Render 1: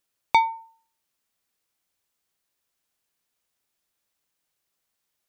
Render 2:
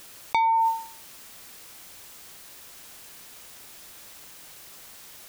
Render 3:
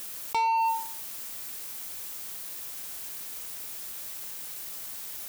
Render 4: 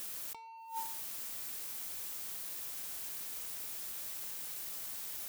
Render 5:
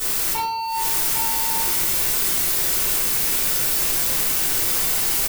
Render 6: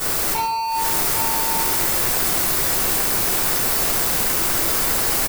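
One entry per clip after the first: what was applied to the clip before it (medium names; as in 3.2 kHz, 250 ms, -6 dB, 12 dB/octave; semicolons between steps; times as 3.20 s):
level flattener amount 100%; trim -7 dB
treble shelf 8.1 kHz +10 dB; waveshaping leveller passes 2; saturation -14.5 dBFS, distortion -18 dB; trim -6.5 dB
compressor with a negative ratio -32 dBFS, ratio -0.5; trim -6 dB
waveshaping leveller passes 5; delay 804 ms -5 dB; simulated room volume 79 m³, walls mixed, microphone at 3.4 m
in parallel at -8.5 dB: sample-and-hold 13×; on the sum: delay 137 ms -16 dB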